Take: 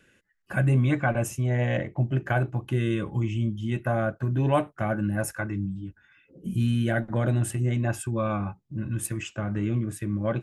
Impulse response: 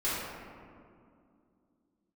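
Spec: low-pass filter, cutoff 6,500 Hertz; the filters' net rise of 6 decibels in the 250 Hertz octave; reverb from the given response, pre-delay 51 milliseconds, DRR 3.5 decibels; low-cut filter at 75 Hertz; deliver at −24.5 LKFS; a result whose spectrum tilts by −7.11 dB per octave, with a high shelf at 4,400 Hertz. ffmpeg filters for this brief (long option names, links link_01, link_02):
-filter_complex "[0:a]highpass=75,lowpass=6500,equalizer=frequency=250:width_type=o:gain=7.5,highshelf=frequency=4400:gain=-5,asplit=2[link_01][link_02];[1:a]atrim=start_sample=2205,adelay=51[link_03];[link_02][link_03]afir=irnorm=-1:irlink=0,volume=-12.5dB[link_04];[link_01][link_04]amix=inputs=2:normalize=0,volume=-2dB"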